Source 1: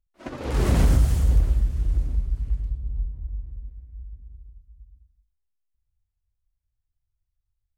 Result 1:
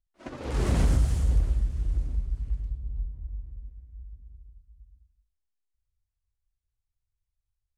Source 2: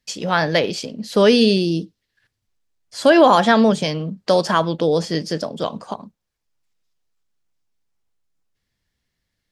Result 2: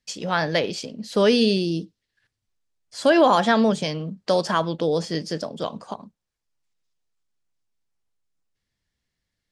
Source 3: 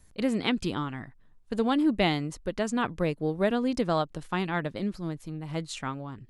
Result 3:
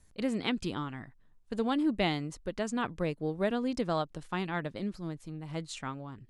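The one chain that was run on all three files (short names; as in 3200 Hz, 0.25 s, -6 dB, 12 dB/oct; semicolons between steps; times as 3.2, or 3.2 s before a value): Chebyshev low-pass 9500 Hz, order 2; gain -3.5 dB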